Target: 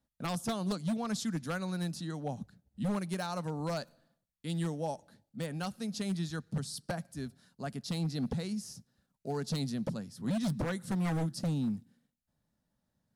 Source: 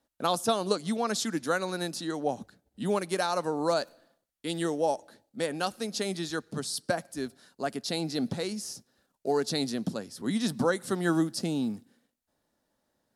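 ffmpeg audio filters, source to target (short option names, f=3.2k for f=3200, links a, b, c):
-af "lowshelf=f=240:t=q:w=1.5:g=11,aeval=exprs='0.119*(abs(mod(val(0)/0.119+3,4)-2)-1)':c=same,volume=-8dB"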